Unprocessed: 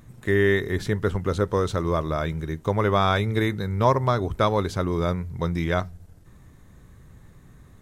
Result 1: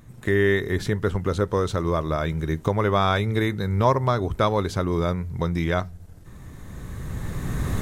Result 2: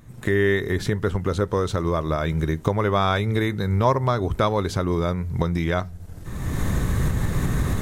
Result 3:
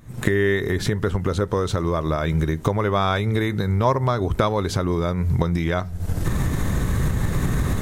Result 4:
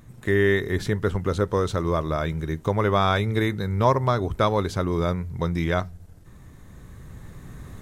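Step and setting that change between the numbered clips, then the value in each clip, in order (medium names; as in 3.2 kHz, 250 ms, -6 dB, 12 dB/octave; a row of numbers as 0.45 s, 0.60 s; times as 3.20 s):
recorder AGC, rising by: 13 dB/s, 34 dB/s, 85 dB/s, 5.3 dB/s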